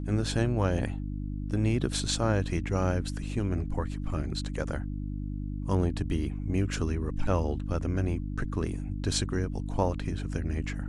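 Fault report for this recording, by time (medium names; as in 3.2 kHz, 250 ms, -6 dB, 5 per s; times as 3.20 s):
hum 50 Hz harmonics 6 -34 dBFS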